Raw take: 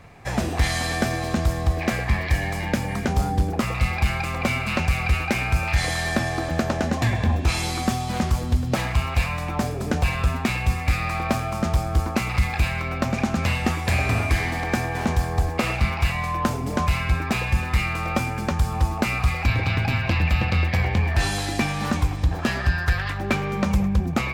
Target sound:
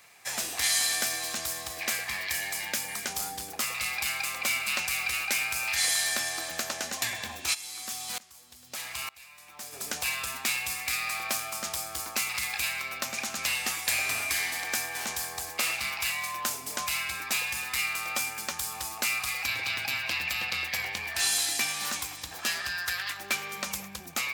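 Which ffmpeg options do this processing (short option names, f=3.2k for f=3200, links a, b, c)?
-filter_complex "[0:a]aderivative,asplit=3[a][b][c];[a]afade=t=out:st=7.53:d=0.02[d];[b]aeval=exprs='val(0)*pow(10,-24*if(lt(mod(-1.1*n/s,1),2*abs(-1.1)/1000),1-mod(-1.1*n/s,1)/(2*abs(-1.1)/1000),(mod(-1.1*n/s,1)-2*abs(-1.1)/1000)/(1-2*abs(-1.1)/1000))/20)':c=same,afade=t=in:st=7.53:d=0.02,afade=t=out:st=9.72:d=0.02[e];[c]afade=t=in:st=9.72:d=0.02[f];[d][e][f]amix=inputs=3:normalize=0,volume=7.5dB"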